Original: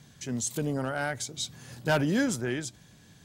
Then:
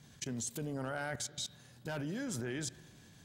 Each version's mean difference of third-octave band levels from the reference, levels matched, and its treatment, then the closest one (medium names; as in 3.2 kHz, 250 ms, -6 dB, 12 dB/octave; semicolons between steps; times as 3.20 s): 4.5 dB: level held to a coarse grid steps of 20 dB; spring tank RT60 1.3 s, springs 39/59 ms, chirp 45 ms, DRR 16.5 dB; trim +1.5 dB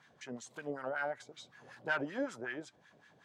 8.0 dB: in parallel at +0.5 dB: compression, threshold -42 dBFS, peak gain reduction 19.5 dB; on the sum: wah-wah 5.3 Hz 490–1800 Hz, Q 2.1; trim -2 dB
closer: first